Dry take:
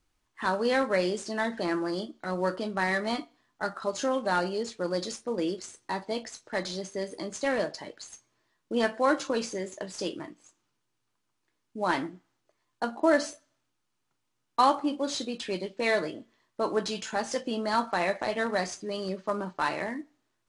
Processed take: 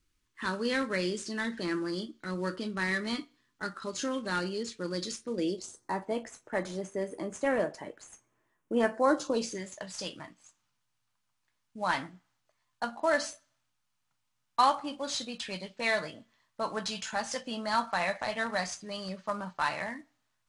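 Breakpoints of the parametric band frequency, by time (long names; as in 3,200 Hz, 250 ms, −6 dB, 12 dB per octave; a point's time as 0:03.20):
parametric band −15 dB 0.92 octaves
0:05.27 720 Hz
0:06.01 4,400 Hz
0:08.81 4,400 Hz
0:09.41 1,600 Hz
0:09.67 360 Hz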